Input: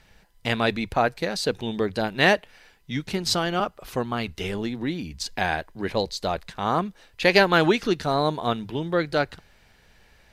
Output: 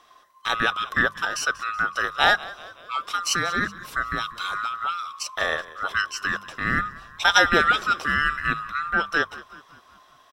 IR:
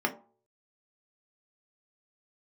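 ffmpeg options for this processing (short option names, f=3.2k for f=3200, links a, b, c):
-filter_complex "[0:a]afftfilt=real='real(if(lt(b,960),b+48*(1-2*mod(floor(b/48),2)),b),0)':imag='imag(if(lt(b,960),b+48*(1-2*mod(floor(b/48),2)),b),0)':win_size=2048:overlap=0.75,bandreject=f=50:t=h:w=6,bandreject=f=100:t=h:w=6,bandreject=f=150:t=h:w=6,bandreject=f=200:t=h:w=6,asplit=6[a][b][c][d][e][f];[b]adelay=188,afreqshift=-57,volume=-19dB[g];[c]adelay=376,afreqshift=-114,volume=-24.2dB[h];[d]adelay=564,afreqshift=-171,volume=-29.4dB[i];[e]adelay=752,afreqshift=-228,volume=-34.6dB[j];[f]adelay=940,afreqshift=-285,volume=-39.8dB[k];[a][g][h][i][j][k]amix=inputs=6:normalize=0"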